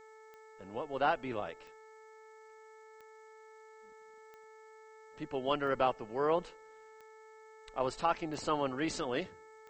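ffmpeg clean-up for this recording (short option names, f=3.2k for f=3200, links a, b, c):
-af "adeclick=t=4,bandreject=f=437.8:t=h:w=4,bandreject=f=875.6:t=h:w=4,bandreject=f=1.3134k:t=h:w=4,bandreject=f=1.7512k:t=h:w=4,bandreject=f=2.189k:t=h:w=4,agate=range=-21dB:threshold=-48dB"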